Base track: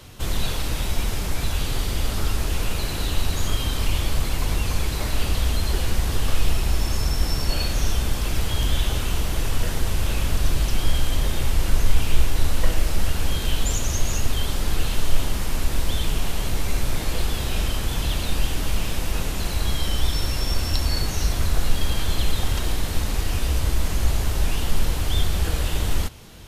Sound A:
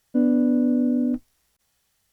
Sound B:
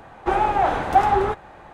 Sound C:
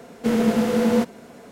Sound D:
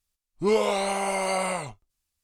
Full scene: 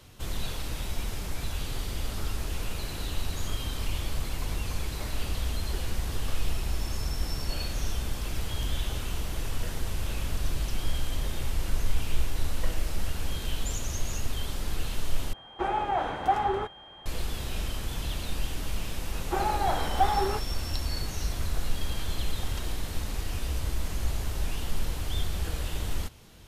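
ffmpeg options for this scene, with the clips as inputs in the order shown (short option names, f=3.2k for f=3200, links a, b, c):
-filter_complex "[2:a]asplit=2[a][b];[0:a]volume=-8.5dB[c];[a]aeval=exprs='val(0)+0.01*sin(2*PI*3200*n/s)':c=same[d];[c]asplit=2[e][f];[e]atrim=end=15.334[g];[d]atrim=end=1.73,asetpts=PTS-STARTPTS,volume=-8.5dB[h];[f]atrim=start=17.056[i];[b]atrim=end=1.73,asetpts=PTS-STARTPTS,volume=-8.5dB,afade=t=in:d=0.004:c=hsin,afade=t=out:st=1.726:d=0.004:c=hsin,adelay=19050[j];[g][h]acrossfade=d=0.004:c1=hsin:c2=hsin[k];[k][i]acrossfade=d=0.004:c1=hsin:c2=hsin[l];[l][j]amix=inputs=2:normalize=0"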